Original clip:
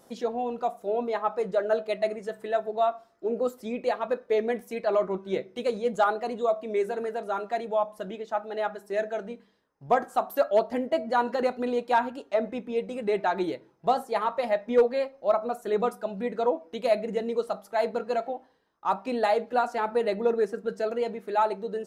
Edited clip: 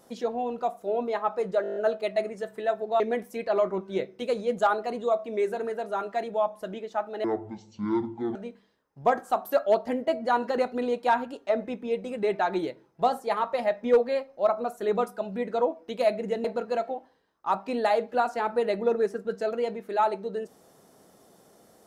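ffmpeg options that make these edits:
-filter_complex "[0:a]asplit=12[a][b][c][d][e][f][g][h][i][j][k][l];[a]atrim=end=1.642[m];[b]atrim=start=1.618:end=1.642[n];[c]atrim=start=1.618:end=1.642[o];[d]atrim=start=1.618:end=1.642[p];[e]atrim=start=1.618:end=1.642[q];[f]atrim=start=1.618:end=1.642[r];[g]atrim=start=1.618:end=1.642[s];[h]atrim=start=1.618:end=2.862[t];[i]atrim=start=4.368:end=8.614[u];[j]atrim=start=8.61:end=9.2,asetpts=PTS-STARTPTS,asetrate=23373,aresample=44100,atrim=end_sample=49092,asetpts=PTS-STARTPTS[v];[k]atrim=start=9.196:end=17.292[w];[l]atrim=start=17.828[x];[m][n]acrossfade=d=0.004:c1=hsin:c2=hsin[y];[y][o]acrossfade=d=0.004:c1=hsin:c2=hsin[z];[z][p]acrossfade=d=0.004:c1=hsin:c2=hsin[aa];[aa][q]acrossfade=d=0.004:c1=hsin:c2=hsin[ab];[ab][r]acrossfade=d=0.004:c1=hsin:c2=hsin[ac];[ac][s]acrossfade=d=0.004:c1=hsin:c2=hsin[ad];[ad][t]acrossfade=d=0.004:c1=hsin:c2=hsin[ae];[ae][u]acrossfade=d=0.004:c1=hsin:c2=hsin[af];[af][v]acrossfade=d=0.004:c1=hsin:c2=hsin[ag];[ag][w]acrossfade=d=0.004:c1=hsin:c2=hsin[ah];[ah][x]acrossfade=d=0.004:c1=hsin:c2=hsin"

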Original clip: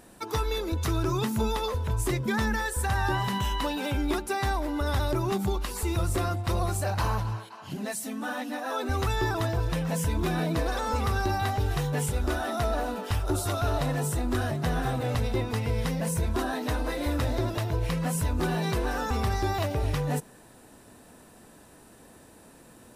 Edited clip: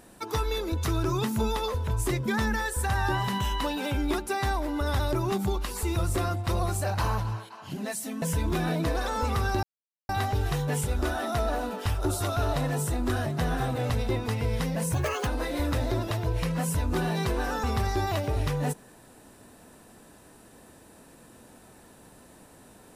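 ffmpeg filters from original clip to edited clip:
-filter_complex "[0:a]asplit=5[a][b][c][d][e];[a]atrim=end=8.222[f];[b]atrim=start=9.928:end=11.34,asetpts=PTS-STARTPTS,afade=t=out:st=1.408:d=0.004:c=hsin,apad=pad_dur=0.46[g];[c]atrim=start=11.34:end=16.194,asetpts=PTS-STARTPTS,afade=t=in:d=0.004:c=hsin[h];[d]atrim=start=16.19:end=16.74,asetpts=PTS-STARTPTS,asetrate=73206,aresample=44100,atrim=end_sample=14611,asetpts=PTS-STARTPTS[i];[e]atrim=start=16.736[j];[g][h]concat=n=2:v=0:a=1[k];[f][k]acrossfade=d=0.004:c1=hsin:c2=hsin[l];[l][i]acrossfade=d=0.004:c1=hsin:c2=hsin[m];[m][j]acrossfade=d=0.004:c1=hsin:c2=hsin"

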